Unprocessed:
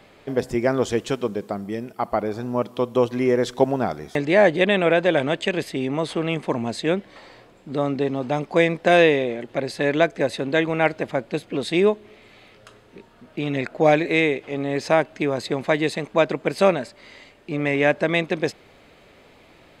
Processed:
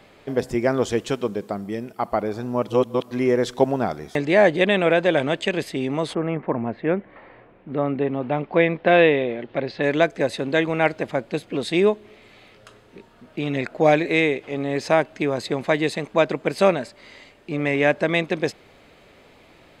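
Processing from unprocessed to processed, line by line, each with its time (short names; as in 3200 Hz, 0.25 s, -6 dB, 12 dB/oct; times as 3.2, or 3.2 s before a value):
2.68–3.11 reverse
6.13–9.82 LPF 1800 Hz -> 4300 Hz 24 dB/oct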